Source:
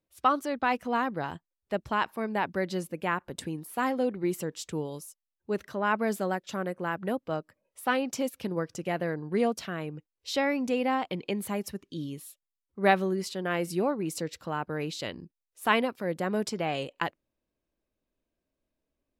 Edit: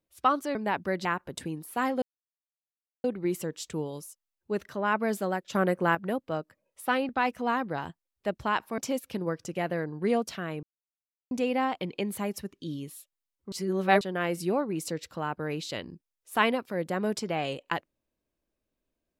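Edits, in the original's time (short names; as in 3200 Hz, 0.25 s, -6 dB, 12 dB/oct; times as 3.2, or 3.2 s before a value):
0.55–2.24 move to 8.08
2.74–3.06 cut
4.03 insert silence 1.02 s
6.54–6.94 gain +7 dB
9.93–10.61 mute
12.82–13.31 reverse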